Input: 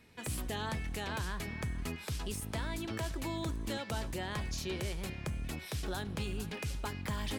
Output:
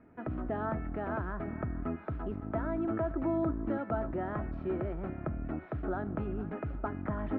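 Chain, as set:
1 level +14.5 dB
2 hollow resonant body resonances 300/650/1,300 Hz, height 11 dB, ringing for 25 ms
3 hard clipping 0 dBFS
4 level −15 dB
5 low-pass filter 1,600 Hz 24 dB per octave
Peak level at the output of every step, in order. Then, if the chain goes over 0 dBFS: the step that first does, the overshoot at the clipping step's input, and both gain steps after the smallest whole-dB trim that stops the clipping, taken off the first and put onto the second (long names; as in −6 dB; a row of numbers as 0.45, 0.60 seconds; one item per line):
−13.0, −5.0, −5.0, −20.0, −20.0 dBFS
no step passes full scale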